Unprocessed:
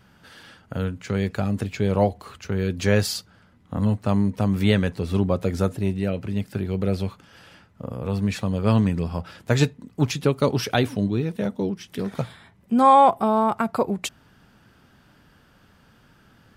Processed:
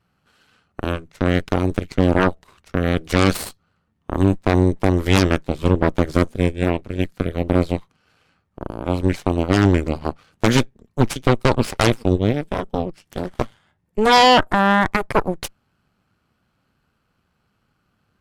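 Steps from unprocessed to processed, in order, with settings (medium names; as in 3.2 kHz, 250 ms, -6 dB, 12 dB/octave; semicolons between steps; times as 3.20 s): Chebyshev shaper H 3 -27 dB, 5 -30 dB, 6 -7 dB, 7 -19 dB, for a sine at -5.5 dBFS; tape speed -9%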